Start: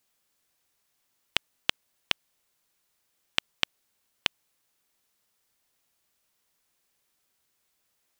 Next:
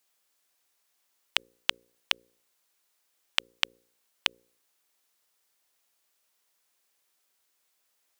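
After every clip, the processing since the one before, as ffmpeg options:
-af "bass=f=250:g=-12,treble=f=4k:g=1,bandreject=f=59.18:t=h:w=4,bandreject=f=118.36:t=h:w=4,bandreject=f=177.54:t=h:w=4,bandreject=f=236.72:t=h:w=4,bandreject=f=295.9:t=h:w=4,bandreject=f=355.08:t=h:w=4,bandreject=f=414.26:t=h:w=4,bandreject=f=473.44:t=h:w=4,bandreject=f=532.62:t=h:w=4"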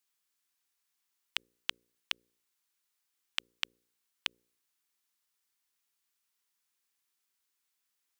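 -af "equalizer=f=590:w=2.2:g=-13.5,volume=-7.5dB"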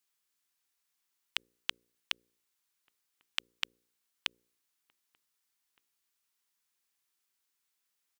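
-filter_complex "[0:a]asplit=2[a][b];[b]adelay=1516,volume=-29dB,highshelf=f=4k:g=-34.1[c];[a][c]amix=inputs=2:normalize=0"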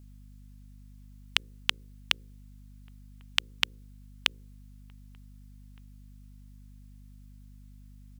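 -af "aeval=exprs='val(0)+0.00126*(sin(2*PI*50*n/s)+sin(2*PI*2*50*n/s)/2+sin(2*PI*3*50*n/s)/3+sin(2*PI*4*50*n/s)/4+sin(2*PI*5*50*n/s)/5)':c=same,volume=8.5dB"

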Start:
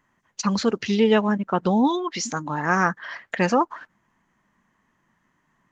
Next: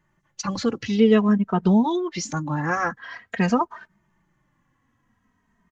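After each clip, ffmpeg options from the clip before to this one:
-filter_complex "[0:a]lowshelf=f=200:g=11,asplit=2[a][b];[b]adelay=2.9,afreqshift=-0.49[c];[a][c]amix=inputs=2:normalize=1"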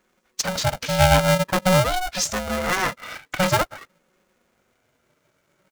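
-af "highshelf=f=3.6k:g=11,aeval=exprs='val(0)*sgn(sin(2*PI*370*n/s))':c=same"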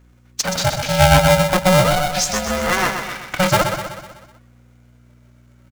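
-af "aeval=exprs='val(0)+0.00224*(sin(2*PI*60*n/s)+sin(2*PI*2*60*n/s)/2+sin(2*PI*3*60*n/s)/3+sin(2*PI*4*60*n/s)/4+sin(2*PI*5*60*n/s)/5)':c=same,aecho=1:1:125|250|375|500|625|750:0.447|0.232|0.121|0.0628|0.0327|0.017,volume=3.5dB"

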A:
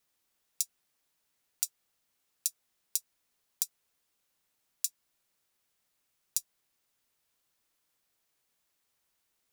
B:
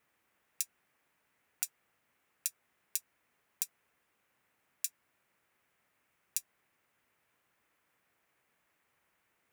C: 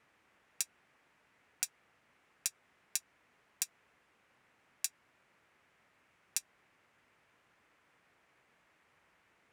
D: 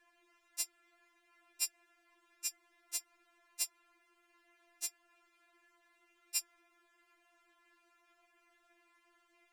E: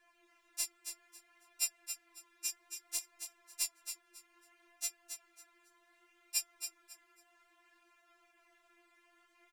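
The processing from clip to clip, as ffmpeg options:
-af "highpass=65,highshelf=f=3k:t=q:w=1.5:g=-10.5,volume=7.5dB"
-filter_complex "[0:a]asplit=2[a][b];[b]alimiter=limit=-17.5dB:level=0:latency=1:release=99,volume=-1dB[c];[a][c]amix=inputs=2:normalize=0,adynamicsmooth=sensitivity=7.5:basefreq=6.9k,volume=2dB"
-af "aeval=exprs='val(0)*sin(2*PI*36*n/s)':c=same,afftfilt=real='re*4*eq(mod(b,16),0)':imag='im*4*eq(mod(b,16),0)':win_size=2048:overlap=0.75,volume=5.5dB"
-filter_complex "[0:a]flanger=delay=16:depth=7:speed=0.62,asplit=2[a][b];[b]aecho=0:1:274|548|822:0.398|0.0876|0.0193[c];[a][c]amix=inputs=2:normalize=0,volume=4.5dB"

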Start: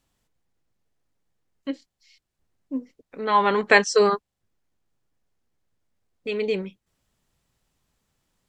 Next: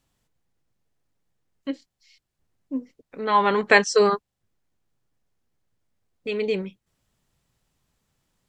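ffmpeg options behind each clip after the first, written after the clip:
-af "equalizer=f=130:t=o:w=0.82:g=3"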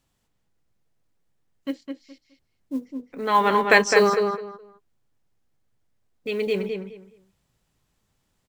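-filter_complex "[0:a]acrusher=bits=8:mode=log:mix=0:aa=0.000001,asplit=2[a][b];[b]adelay=209,lowpass=f=3.3k:p=1,volume=-5dB,asplit=2[c][d];[d]adelay=209,lowpass=f=3.3k:p=1,volume=0.22,asplit=2[e][f];[f]adelay=209,lowpass=f=3.3k:p=1,volume=0.22[g];[a][c][e][g]amix=inputs=4:normalize=0"

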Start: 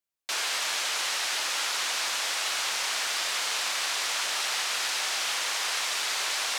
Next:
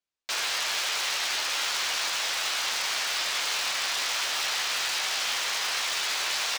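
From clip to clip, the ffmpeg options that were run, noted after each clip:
-filter_complex "[0:a]acrossover=split=110|1800|7400[a][b][c][d];[c]asplit=2[e][f];[f]adelay=13,volume=-3dB[g];[e][g]amix=inputs=2:normalize=0[h];[d]acrusher=bits=5:mix=0:aa=0.000001[i];[a][b][h][i]amix=inputs=4:normalize=0"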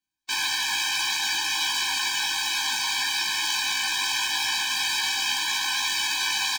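-filter_complex "[0:a]asplit=2[a][b];[b]adelay=19,volume=-3.5dB[c];[a][c]amix=inputs=2:normalize=0,afftfilt=real='re*eq(mod(floor(b*sr/1024/370),2),0)':imag='im*eq(mod(floor(b*sr/1024/370),2),0)':win_size=1024:overlap=0.75,volume=4.5dB"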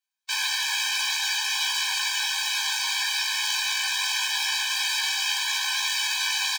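-af "highpass=910"

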